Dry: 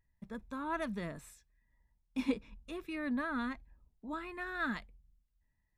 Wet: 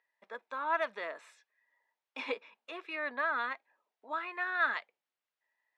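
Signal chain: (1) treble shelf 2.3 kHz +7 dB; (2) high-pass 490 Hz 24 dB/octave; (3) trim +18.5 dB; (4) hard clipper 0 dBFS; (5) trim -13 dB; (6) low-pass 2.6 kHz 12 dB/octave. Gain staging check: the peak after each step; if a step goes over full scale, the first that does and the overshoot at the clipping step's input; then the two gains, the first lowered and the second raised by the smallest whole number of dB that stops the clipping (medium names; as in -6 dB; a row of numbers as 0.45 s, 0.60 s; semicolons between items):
-21.5 dBFS, -23.0 dBFS, -4.5 dBFS, -4.5 dBFS, -17.5 dBFS, -18.5 dBFS; nothing clips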